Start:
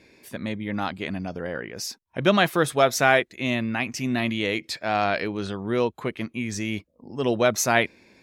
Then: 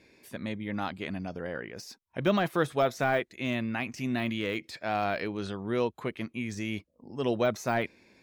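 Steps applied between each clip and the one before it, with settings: de-esser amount 80%; trim -5 dB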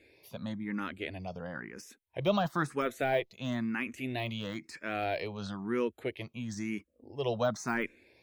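barber-pole phaser +1 Hz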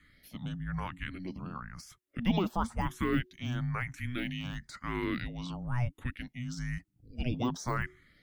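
frequency shift -370 Hz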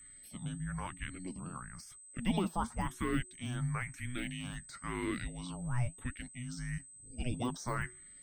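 whistle 8.2 kHz -49 dBFS; flange 0.95 Hz, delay 0.7 ms, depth 7 ms, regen +72%; trim +1 dB

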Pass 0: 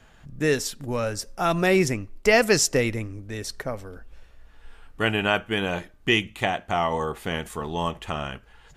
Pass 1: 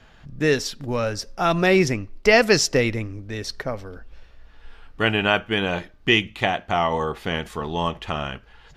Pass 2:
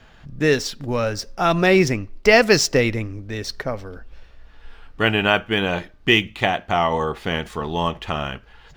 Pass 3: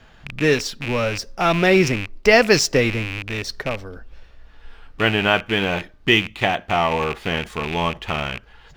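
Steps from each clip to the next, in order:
resonant high shelf 6.4 kHz -7.5 dB, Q 1.5; trim +2.5 dB
median filter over 3 samples; trim +2 dB
rattle on loud lows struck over -33 dBFS, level -16 dBFS

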